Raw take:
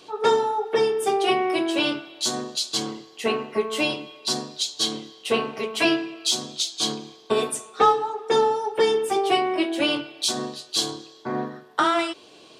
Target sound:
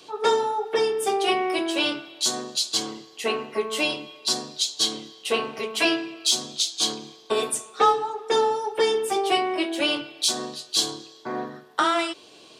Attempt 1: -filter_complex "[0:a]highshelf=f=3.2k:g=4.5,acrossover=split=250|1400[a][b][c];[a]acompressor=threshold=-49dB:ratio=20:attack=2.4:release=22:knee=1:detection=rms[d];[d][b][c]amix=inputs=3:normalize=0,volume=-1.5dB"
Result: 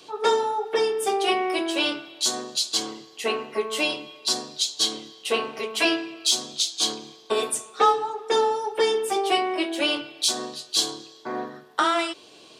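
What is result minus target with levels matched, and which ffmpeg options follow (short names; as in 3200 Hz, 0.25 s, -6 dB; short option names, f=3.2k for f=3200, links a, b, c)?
compressor: peak gain reduction +6.5 dB
-filter_complex "[0:a]highshelf=f=3.2k:g=4.5,acrossover=split=250|1400[a][b][c];[a]acompressor=threshold=-42dB:ratio=20:attack=2.4:release=22:knee=1:detection=rms[d];[d][b][c]amix=inputs=3:normalize=0,volume=-1.5dB"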